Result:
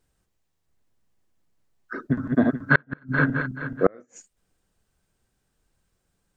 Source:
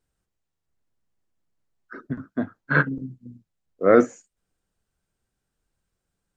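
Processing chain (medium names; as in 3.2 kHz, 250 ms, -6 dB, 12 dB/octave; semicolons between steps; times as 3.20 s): 2.01–4.02 s: backward echo that repeats 215 ms, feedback 51%, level -3 dB; band-stop 1.4 kHz, Q 29; inverted gate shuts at -10 dBFS, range -40 dB; trim +6.5 dB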